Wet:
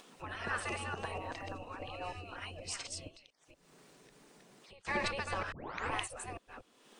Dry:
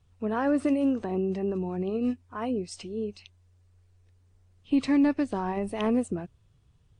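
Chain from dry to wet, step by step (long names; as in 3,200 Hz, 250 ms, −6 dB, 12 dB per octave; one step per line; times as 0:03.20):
delay that plays each chunk backwards 236 ms, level −3 dB
gate on every frequency bin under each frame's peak −20 dB weak
upward compression, threshold −49 dBFS
0:00.97–0:01.57: surface crackle 150 per second −62 dBFS
0:03.08–0:04.85: downward compressor 8 to 1, threshold −60 dBFS, peak gain reduction 22 dB
0:05.52: tape start 0.40 s
level +3.5 dB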